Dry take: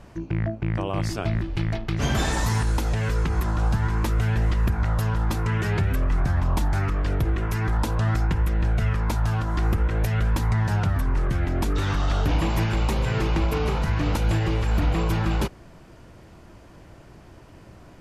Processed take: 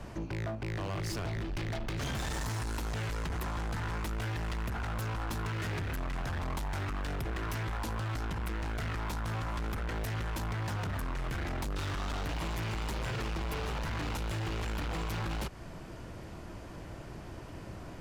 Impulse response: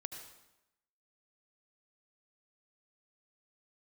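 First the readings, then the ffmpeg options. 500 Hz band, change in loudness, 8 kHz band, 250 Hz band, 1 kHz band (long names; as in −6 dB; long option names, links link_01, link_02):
−10.0 dB, −12.0 dB, −7.0 dB, −11.5 dB, −8.5 dB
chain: -filter_complex "[0:a]acrossover=split=170|650[link_01][link_02][link_03];[link_01]acompressor=threshold=-32dB:ratio=4[link_04];[link_02]acompressor=threshold=-40dB:ratio=4[link_05];[link_03]acompressor=threshold=-36dB:ratio=4[link_06];[link_04][link_05][link_06]amix=inputs=3:normalize=0,asoftclip=type=hard:threshold=-35.5dB,volume=2.5dB"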